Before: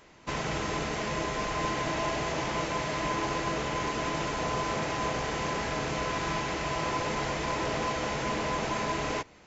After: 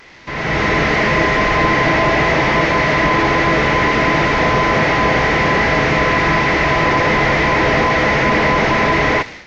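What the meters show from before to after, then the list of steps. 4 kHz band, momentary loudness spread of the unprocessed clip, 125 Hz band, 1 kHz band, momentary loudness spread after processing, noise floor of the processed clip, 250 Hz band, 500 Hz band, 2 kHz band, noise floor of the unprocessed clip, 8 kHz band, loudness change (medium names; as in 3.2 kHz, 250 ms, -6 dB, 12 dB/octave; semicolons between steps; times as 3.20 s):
+13.5 dB, 1 LU, +16.5 dB, +15.5 dB, 1 LU, -32 dBFS, +16.5 dB, +16.0 dB, +20.5 dB, -55 dBFS, no reading, +17.0 dB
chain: one-bit delta coder 32 kbps, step -44 dBFS; peaking EQ 2 kHz +10.5 dB 0.48 oct; level rider gain up to 12.5 dB; trim +4 dB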